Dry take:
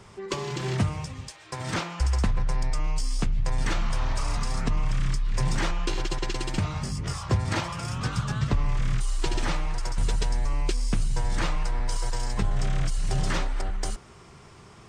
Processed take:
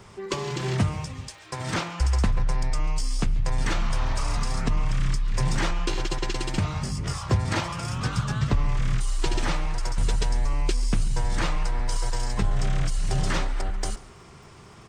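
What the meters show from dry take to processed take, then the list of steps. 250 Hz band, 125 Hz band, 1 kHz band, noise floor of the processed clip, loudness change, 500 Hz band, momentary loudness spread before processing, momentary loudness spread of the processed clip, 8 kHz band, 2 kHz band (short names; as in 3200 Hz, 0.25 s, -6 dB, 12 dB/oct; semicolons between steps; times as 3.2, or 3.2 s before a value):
+1.5 dB, +1.5 dB, +1.5 dB, -48 dBFS, +1.5 dB, +1.5 dB, 5 LU, 5 LU, +1.5 dB, +1.5 dB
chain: crackle 68/s -52 dBFS; on a send: echo 0.139 s -21.5 dB; on the sum: gain +1.5 dB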